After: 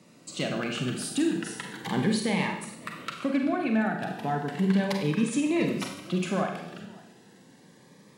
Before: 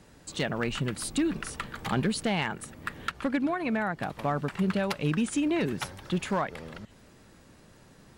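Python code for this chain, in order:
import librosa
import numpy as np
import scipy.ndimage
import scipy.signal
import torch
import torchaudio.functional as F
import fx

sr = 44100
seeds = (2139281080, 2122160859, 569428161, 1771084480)

y = scipy.signal.sosfilt(scipy.signal.butter(4, 140.0, 'highpass', fs=sr, output='sos'), x)
y = fx.high_shelf(y, sr, hz=10000.0, db=-5.5)
y = fx.notch(y, sr, hz=1400.0, q=17.0)
y = y + 10.0 ** (-22.5 / 20.0) * np.pad(y, (int(550 * sr / 1000.0), 0))[:len(y)]
y = fx.rev_schroeder(y, sr, rt60_s=0.69, comb_ms=32, drr_db=2.5)
y = fx.notch_cascade(y, sr, direction='rising', hz=0.35)
y = y * 10.0 ** (1.0 / 20.0)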